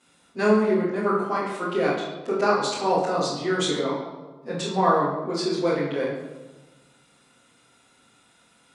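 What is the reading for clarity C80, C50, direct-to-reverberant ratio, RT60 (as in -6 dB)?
4.5 dB, 1.5 dB, -11.5 dB, 1.3 s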